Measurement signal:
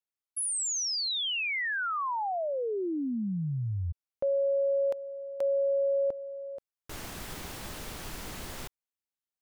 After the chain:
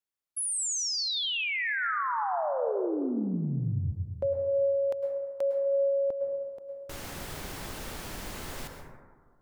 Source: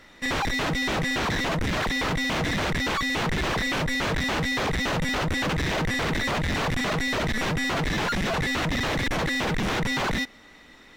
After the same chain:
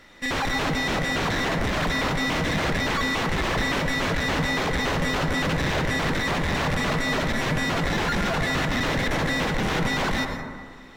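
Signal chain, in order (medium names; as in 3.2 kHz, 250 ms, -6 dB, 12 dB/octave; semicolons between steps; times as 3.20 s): plate-style reverb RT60 1.7 s, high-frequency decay 0.25×, pre-delay 95 ms, DRR 3.5 dB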